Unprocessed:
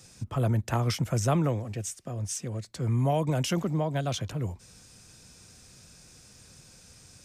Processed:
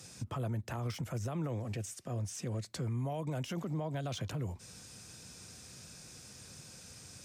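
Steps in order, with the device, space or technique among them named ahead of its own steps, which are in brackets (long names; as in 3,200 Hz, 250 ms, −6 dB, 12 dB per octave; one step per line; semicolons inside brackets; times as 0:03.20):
podcast mastering chain (high-pass filter 75 Hz 12 dB per octave; de-essing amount 85%; downward compressor 2.5 to 1, threshold −36 dBFS, peak gain reduction 11 dB; brickwall limiter −31 dBFS, peak gain reduction 8.5 dB; level +2 dB; MP3 96 kbit/s 48,000 Hz)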